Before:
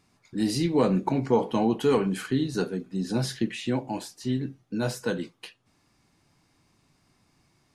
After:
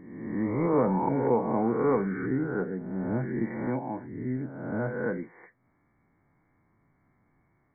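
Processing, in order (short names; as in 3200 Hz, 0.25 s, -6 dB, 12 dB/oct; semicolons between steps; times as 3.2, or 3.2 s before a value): spectral swells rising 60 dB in 1.14 s; brick-wall FIR low-pass 2300 Hz; gain -4.5 dB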